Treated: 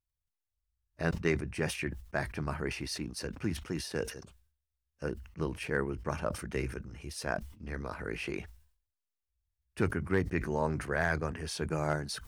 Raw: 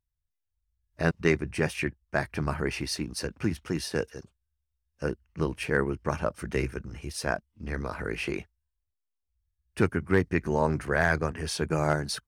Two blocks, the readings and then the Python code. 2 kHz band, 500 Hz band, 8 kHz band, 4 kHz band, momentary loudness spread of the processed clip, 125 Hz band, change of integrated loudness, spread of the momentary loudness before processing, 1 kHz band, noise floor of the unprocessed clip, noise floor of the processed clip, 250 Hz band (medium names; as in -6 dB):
-5.5 dB, -5.5 dB, -4.5 dB, -5.0 dB, 9 LU, -5.0 dB, -5.5 dB, 9 LU, -5.5 dB, -83 dBFS, under -85 dBFS, -5.5 dB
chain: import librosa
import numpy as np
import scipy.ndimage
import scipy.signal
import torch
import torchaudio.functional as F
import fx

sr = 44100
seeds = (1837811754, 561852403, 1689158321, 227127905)

y = fx.sustainer(x, sr, db_per_s=100.0)
y = F.gain(torch.from_numpy(y), -6.0).numpy()